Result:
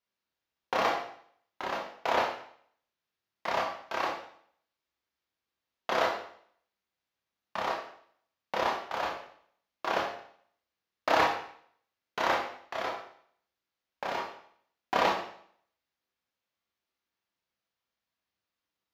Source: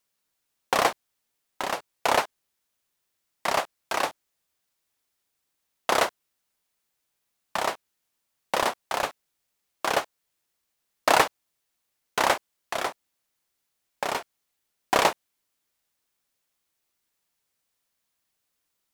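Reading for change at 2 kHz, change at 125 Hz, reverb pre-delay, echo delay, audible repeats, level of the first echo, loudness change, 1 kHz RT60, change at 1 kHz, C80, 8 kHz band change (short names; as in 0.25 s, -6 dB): -4.5 dB, -4.5 dB, 20 ms, none, none, none, -5.0 dB, 0.60 s, -4.0 dB, 8.5 dB, -15.0 dB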